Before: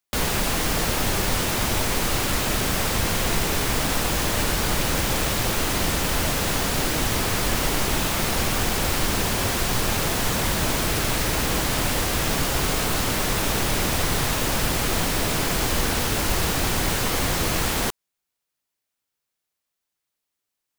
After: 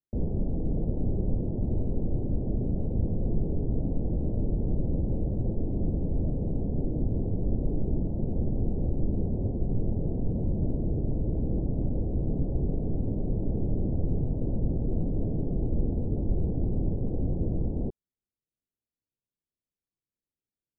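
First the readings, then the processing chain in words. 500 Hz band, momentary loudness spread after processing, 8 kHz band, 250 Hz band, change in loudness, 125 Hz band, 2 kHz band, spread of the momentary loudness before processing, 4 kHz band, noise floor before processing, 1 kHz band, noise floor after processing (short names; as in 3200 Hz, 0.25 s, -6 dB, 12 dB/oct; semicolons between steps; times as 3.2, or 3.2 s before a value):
-8.0 dB, 1 LU, under -40 dB, -2.0 dB, -8.0 dB, -0.5 dB, under -40 dB, 0 LU, under -40 dB, -83 dBFS, -25.0 dB, under -85 dBFS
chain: Gaussian blur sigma 20 samples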